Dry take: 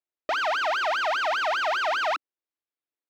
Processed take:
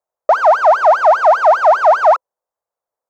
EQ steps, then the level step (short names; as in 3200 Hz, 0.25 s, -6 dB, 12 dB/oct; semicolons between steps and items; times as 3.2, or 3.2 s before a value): EQ curve 170 Hz 0 dB, 310 Hz -10 dB, 520 Hz +13 dB, 980 Hz +10 dB, 2900 Hz -16 dB, 6600 Hz -3 dB, 10000 Hz -5 dB; +6.5 dB